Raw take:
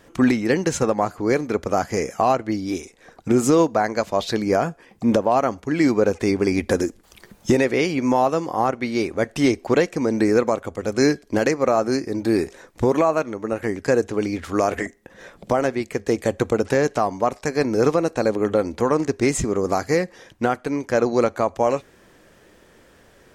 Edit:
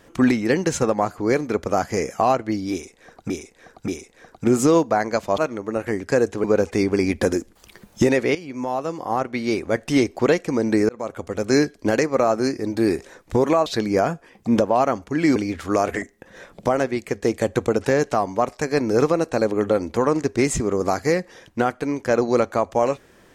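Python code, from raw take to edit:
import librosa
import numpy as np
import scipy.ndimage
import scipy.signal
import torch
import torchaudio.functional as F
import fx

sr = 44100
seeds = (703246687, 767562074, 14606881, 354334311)

y = fx.edit(x, sr, fx.repeat(start_s=2.72, length_s=0.58, count=3),
    fx.swap(start_s=4.22, length_s=1.7, other_s=13.14, other_length_s=1.06),
    fx.fade_in_from(start_s=7.83, length_s=1.14, floor_db=-15.0),
    fx.fade_in_span(start_s=10.37, length_s=0.35), tone=tone)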